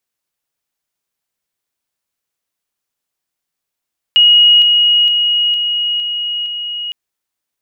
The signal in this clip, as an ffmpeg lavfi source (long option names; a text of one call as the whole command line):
ffmpeg -f lavfi -i "aevalsrc='pow(10,(-4.5-3*floor(t/0.46))/20)*sin(2*PI*2890*t)':duration=2.76:sample_rate=44100" out.wav